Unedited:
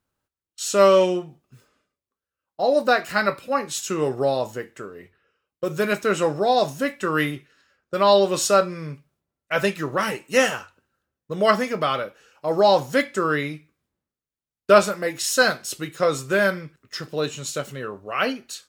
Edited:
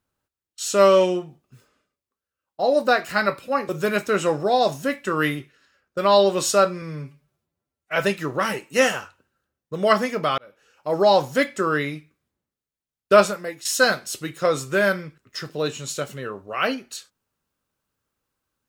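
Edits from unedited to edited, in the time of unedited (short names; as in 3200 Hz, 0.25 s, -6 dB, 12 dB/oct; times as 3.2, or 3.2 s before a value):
3.69–5.65 cut
8.78–9.54 stretch 1.5×
11.96–12.46 fade in
14.79–15.23 fade out, to -12.5 dB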